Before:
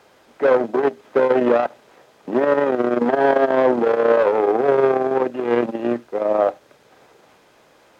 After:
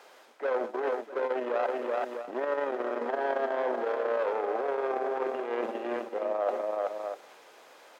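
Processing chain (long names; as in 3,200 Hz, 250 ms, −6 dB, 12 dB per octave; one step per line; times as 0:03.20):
multi-tap delay 128/380/650 ms −18/−8.5/−17 dB
reversed playback
downward compressor 6 to 1, threshold −25 dBFS, peak gain reduction 13.5 dB
reversed playback
high-pass filter 460 Hz 12 dB per octave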